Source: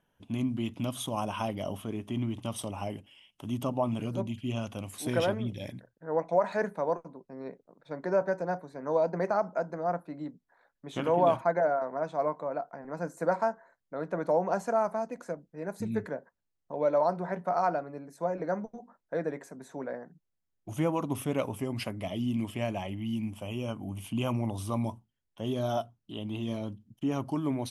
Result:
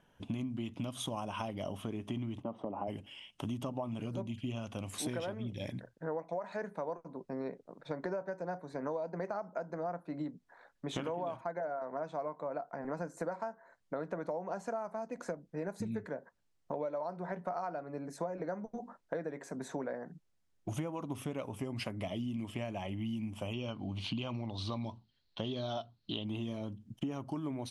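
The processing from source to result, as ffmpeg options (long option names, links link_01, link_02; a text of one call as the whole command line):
ffmpeg -i in.wav -filter_complex "[0:a]asplit=3[link_01][link_02][link_03];[link_01]afade=type=out:start_time=2.41:duration=0.02[link_04];[link_02]asuperpass=centerf=450:order=4:qfactor=0.58,afade=type=in:start_time=2.41:duration=0.02,afade=type=out:start_time=2.87:duration=0.02[link_05];[link_03]afade=type=in:start_time=2.87:duration=0.02[link_06];[link_04][link_05][link_06]amix=inputs=3:normalize=0,asettb=1/sr,asplit=3[link_07][link_08][link_09];[link_07]atrim=end=23.534[link_10];[link_08]atrim=start=23.53:end=26.25,asetpts=PTS-STARTPTS,afade=type=in:duration=0.004:curve=qsin,afade=type=out:start_time=2.716:duration=0.004:curve=qsin,lowpass=frequency=4200:width_type=q:width=8.8[link_11];[link_09]atrim=start=26.246[link_12];[link_10][link_11]acrossfade=duration=0.004:curve1=hsin:curve2=qsin[link_13];[link_13][link_12]acrossfade=duration=0.004:curve1=qsin:curve2=hsin,lowpass=8900,acompressor=threshold=-41dB:ratio=12,volume=6.5dB" out.wav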